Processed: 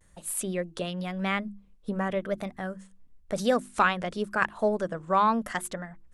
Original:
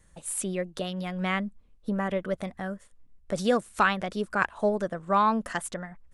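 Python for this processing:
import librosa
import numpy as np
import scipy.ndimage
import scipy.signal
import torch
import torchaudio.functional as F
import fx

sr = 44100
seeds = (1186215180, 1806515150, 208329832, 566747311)

y = fx.hum_notches(x, sr, base_hz=50, count=7)
y = fx.vibrato(y, sr, rate_hz=0.95, depth_cents=70.0)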